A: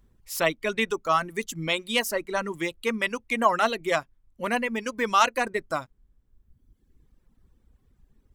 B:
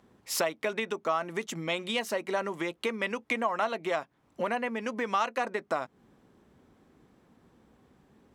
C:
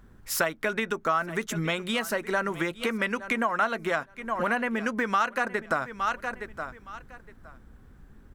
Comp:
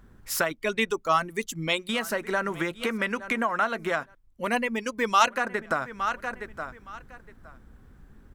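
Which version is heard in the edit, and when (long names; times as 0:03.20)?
C
0:00.51–0:01.89: punch in from A
0:04.15–0:05.28: punch in from A
not used: B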